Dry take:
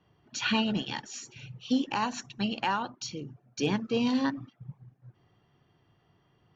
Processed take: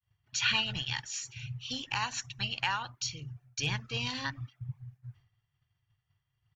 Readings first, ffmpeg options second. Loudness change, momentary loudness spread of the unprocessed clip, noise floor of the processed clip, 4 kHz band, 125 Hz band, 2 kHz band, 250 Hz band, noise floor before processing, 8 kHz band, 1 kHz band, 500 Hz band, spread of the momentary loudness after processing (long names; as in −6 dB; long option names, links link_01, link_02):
−2.5 dB, 16 LU, −82 dBFS, +3.0 dB, +2.0 dB, +2.0 dB, −16.0 dB, −69 dBFS, can't be measured, −5.0 dB, −14.0 dB, 15 LU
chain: -af "agate=range=-33dB:threshold=-56dB:ratio=3:detection=peak,firequalizer=gain_entry='entry(120,0);entry(200,-25);entry(360,-24);entry(880,-13);entry(2000,-4);entry(3800,-5);entry(7500,-3)':delay=0.05:min_phase=1,volume=7.5dB"